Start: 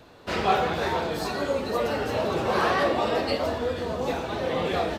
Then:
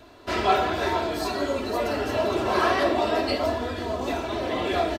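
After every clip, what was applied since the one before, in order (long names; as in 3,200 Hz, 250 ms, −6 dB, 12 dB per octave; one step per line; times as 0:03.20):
comb filter 3 ms, depth 64%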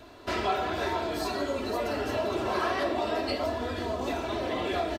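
downward compressor 2 to 1, threshold −30 dBFS, peak gain reduction 8.5 dB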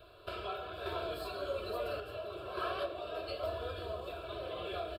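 sample-and-hold tremolo
phaser with its sweep stopped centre 1,300 Hz, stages 8
level −4 dB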